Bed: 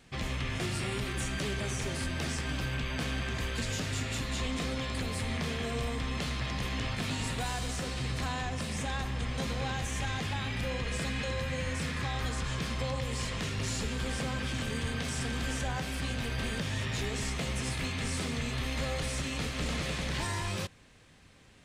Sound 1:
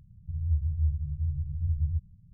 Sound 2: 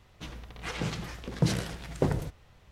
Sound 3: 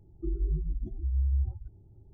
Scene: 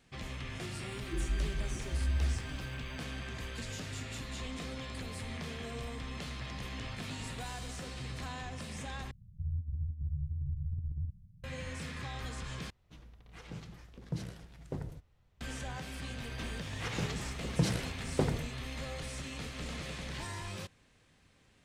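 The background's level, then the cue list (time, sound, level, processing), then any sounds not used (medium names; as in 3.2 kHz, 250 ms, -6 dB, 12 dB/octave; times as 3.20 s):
bed -7.5 dB
0.89 s: add 3 -4 dB + word length cut 12-bit, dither triangular
9.11 s: replace with 1 -5 dB + compressor with a negative ratio -29 dBFS, ratio -0.5
12.70 s: replace with 2 -16.5 dB + bass shelf 240 Hz +7 dB
16.17 s: add 2 -3.5 dB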